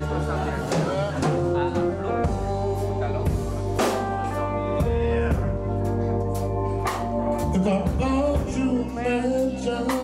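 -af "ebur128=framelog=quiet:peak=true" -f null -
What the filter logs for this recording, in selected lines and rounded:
Integrated loudness:
  I:         -24.7 LUFS
  Threshold: -34.7 LUFS
Loudness range:
  LRA:         1.1 LU
  Threshold: -44.8 LUFS
  LRA low:   -25.2 LUFS
  LRA high:  -24.1 LUFS
True peak:
  Peak:      -11.9 dBFS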